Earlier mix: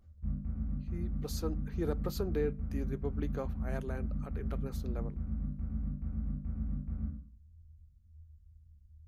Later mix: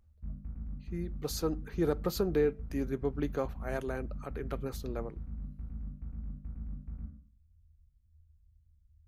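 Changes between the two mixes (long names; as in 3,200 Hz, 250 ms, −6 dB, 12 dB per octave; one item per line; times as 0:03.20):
speech +5.5 dB
background: send −9.0 dB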